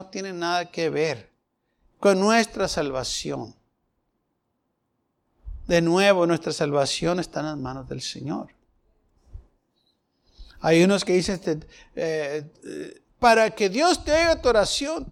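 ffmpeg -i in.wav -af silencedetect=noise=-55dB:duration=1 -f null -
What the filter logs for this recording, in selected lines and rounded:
silence_start: 3.58
silence_end: 5.40 | silence_duration: 1.82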